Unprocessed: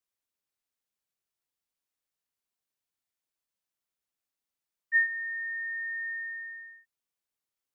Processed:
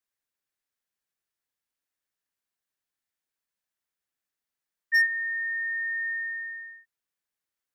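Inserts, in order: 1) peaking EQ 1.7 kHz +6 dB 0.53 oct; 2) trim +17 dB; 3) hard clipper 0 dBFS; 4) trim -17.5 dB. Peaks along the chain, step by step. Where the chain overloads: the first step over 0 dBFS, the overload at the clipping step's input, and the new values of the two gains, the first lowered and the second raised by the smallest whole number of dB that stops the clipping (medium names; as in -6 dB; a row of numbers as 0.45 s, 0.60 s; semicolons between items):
-12.0 dBFS, +5.0 dBFS, 0.0 dBFS, -17.5 dBFS; step 2, 5.0 dB; step 2 +12 dB, step 4 -12.5 dB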